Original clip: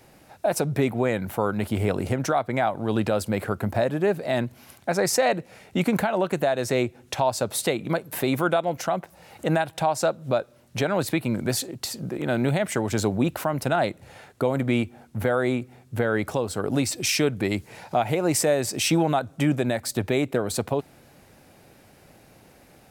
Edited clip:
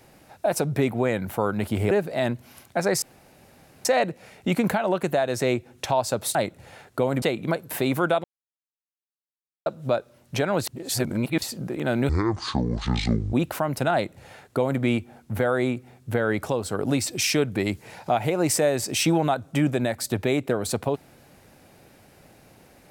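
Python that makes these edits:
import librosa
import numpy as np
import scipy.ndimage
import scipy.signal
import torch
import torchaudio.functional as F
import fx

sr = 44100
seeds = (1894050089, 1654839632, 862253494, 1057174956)

y = fx.edit(x, sr, fx.cut(start_s=1.91, length_s=2.12),
    fx.insert_room_tone(at_s=5.14, length_s=0.83),
    fx.silence(start_s=8.66, length_s=1.42),
    fx.reverse_span(start_s=11.09, length_s=0.75),
    fx.speed_span(start_s=12.51, length_s=0.67, speed=0.54),
    fx.duplicate(start_s=13.78, length_s=0.87, to_s=7.64), tone=tone)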